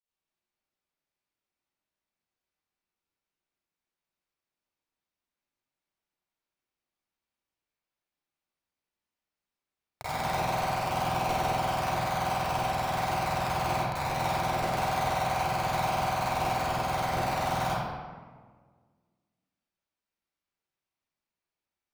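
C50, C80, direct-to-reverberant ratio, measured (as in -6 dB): -7.5 dB, -2.5 dB, -14.5 dB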